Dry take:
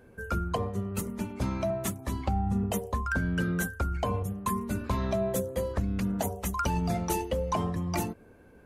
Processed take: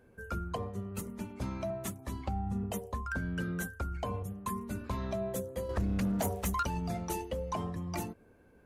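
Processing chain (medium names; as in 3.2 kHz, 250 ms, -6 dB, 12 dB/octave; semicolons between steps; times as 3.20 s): 5.69–6.63 s: waveshaping leveller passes 2; trim -6.5 dB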